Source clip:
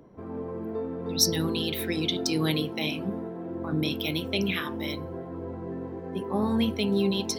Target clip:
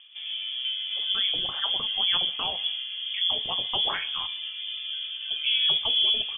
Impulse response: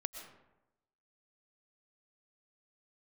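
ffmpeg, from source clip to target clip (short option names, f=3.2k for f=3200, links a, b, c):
-filter_complex "[0:a]asetrate=51156,aresample=44100,asplit=2[a][b];[1:a]atrim=start_sample=2205[c];[b][c]afir=irnorm=-1:irlink=0,volume=-13dB[d];[a][d]amix=inputs=2:normalize=0,lowpass=f=3.1k:t=q:w=0.5098,lowpass=f=3.1k:t=q:w=0.6013,lowpass=f=3.1k:t=q:w=0.9,lowpass=f=3.1k:t=q:w=2.563,afreqshift=-3600"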